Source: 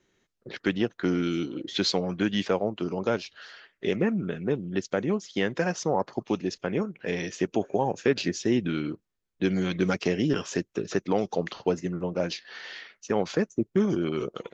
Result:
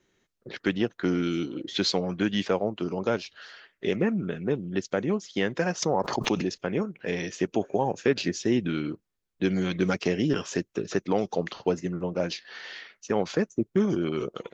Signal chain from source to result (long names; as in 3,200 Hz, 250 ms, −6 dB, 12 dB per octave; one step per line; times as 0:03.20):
0:05.82–0:06.57: background raised ahead of every attack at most 56 dB per second